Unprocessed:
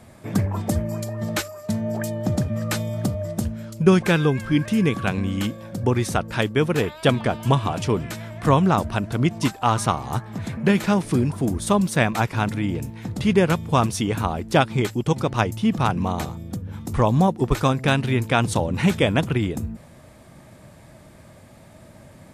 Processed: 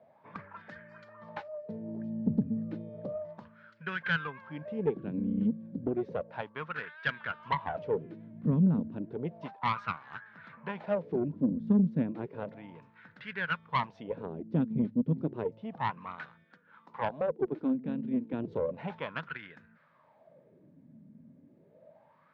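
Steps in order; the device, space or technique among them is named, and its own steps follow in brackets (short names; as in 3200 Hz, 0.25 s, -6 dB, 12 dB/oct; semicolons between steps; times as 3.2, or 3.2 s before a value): 16.44–18.33 HPF 270 Hz 12 dB/oct; wah-wah guitar rig (wah 0.32 Hz 230–1600 Hz, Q 6.1; tube stage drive 22 dB, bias 0.55; speaker cabinet 89–4400 Hz, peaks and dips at 160 Hz +8 dB, 340 Hz -7 dB, 750 Hz -9 dB, 1200 Hz -6 dB); gain +5 dB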